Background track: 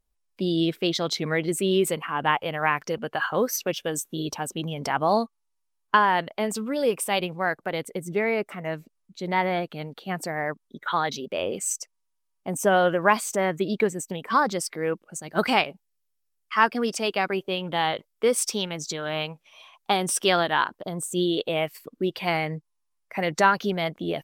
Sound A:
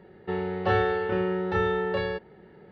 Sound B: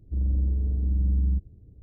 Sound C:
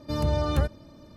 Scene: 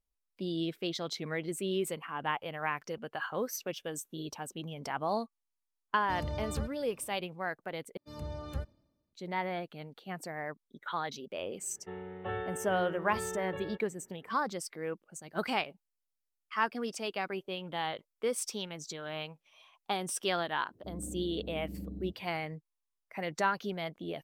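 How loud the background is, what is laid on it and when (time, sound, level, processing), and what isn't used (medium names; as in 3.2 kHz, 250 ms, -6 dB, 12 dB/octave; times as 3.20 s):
background track -10.5 dB
6.00 s: add C -12 dB
7.97 s: replace with C -15.5 dB + three bands expanded up and down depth 100%
11.59 s: add A -13.5 dB + resampled via 8 kHz
20.73 s: add B -0.5 dB + high-pass 250 Hz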